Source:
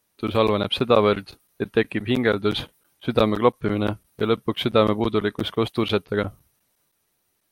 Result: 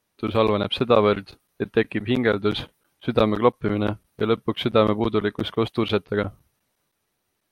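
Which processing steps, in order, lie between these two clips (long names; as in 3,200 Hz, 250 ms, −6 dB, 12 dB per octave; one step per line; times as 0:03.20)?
high-shelf EQ 6,400 Hz −8.5 dB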